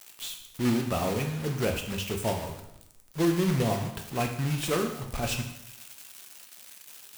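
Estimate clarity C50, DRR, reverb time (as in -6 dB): 7.0 dB, 3.0 dB, 0.85 s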